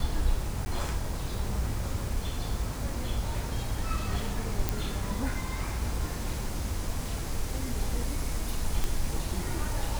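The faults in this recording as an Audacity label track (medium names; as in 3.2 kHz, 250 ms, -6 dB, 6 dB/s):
0.650000	0.660000	dropout 10 ms
4.690000	4.690000	pop
8.840000	8.840000	pop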